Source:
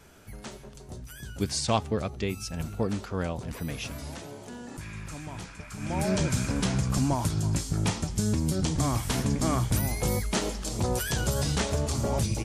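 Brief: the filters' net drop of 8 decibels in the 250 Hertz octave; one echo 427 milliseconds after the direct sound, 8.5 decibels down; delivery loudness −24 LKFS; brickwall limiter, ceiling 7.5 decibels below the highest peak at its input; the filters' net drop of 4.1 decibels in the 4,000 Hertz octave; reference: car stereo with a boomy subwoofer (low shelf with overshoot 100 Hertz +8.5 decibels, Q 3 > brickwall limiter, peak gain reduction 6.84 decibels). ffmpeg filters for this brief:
ffmpeg -i in.wav -af "equalizer=frequency=250:width_type=o:gain=-8,equalizer=frequency=4000:width_type=o:gain=-5.5,alimiter=limit=-21dB:level=0:latency=1,lowshelf=frequency=100:width_type=q:width=3:gain=8.5,aecho=1:1:427:0.376,volume=4dB,alimiter=limit=-12.5dB:level=0:latency=1" out.wav

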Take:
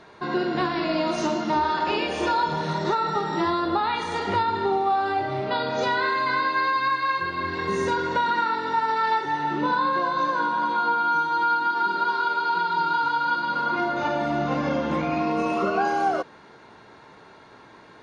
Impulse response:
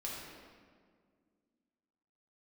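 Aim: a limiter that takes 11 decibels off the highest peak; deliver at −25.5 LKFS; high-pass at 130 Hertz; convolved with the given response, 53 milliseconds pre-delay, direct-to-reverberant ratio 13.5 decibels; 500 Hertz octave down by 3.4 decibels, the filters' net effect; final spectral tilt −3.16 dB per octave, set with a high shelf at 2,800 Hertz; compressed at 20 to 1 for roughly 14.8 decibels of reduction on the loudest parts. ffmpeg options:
-filter_complex "[0:a]highpass=130,equalizer=frequency=500:width_type=o:gain=-4.5,highshelf=frequency=2800:gain=-7.5,acompressor=threshold=-36dB:ratio=20,alimiter=level_in=13.5dB:limit=-24dB:level=0:latency=1,volume=-13.5dB,asplit=2[link_01][link_02];[1:a]atrim=start_sample=2205,adelay=53[link_03];[link_02][link_03]afir=irnorm=-1:irlink=0,volume=-14.5dB[link_04];[link_01][link_04]amix=inputs=2:normalize=0,volume=19dB"

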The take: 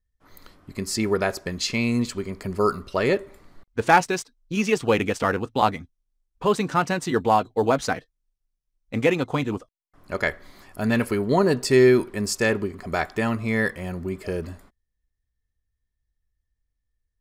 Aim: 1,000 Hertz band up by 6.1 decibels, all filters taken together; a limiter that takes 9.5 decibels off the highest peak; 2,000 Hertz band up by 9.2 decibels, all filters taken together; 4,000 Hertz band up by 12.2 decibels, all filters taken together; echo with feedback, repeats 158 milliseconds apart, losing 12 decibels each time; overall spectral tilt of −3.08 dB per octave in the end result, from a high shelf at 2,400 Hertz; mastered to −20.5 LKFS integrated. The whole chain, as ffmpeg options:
ffmpeg -i in.wav -af "equalizer=frequency=1000:width_type=o:gain=5,equalizer=frequency=2000:width_type=o:gain=4.5,highshelf=frequency=2400:gain=8.5,equalizer=frequency=4000:width_type=o:gain=6,alimiter=limit=-5.5dB:level=0:latency=1,aecho=1:1:158|316|474:0.251|0.0628|0.0157,volume=-0.5dB" out.wav

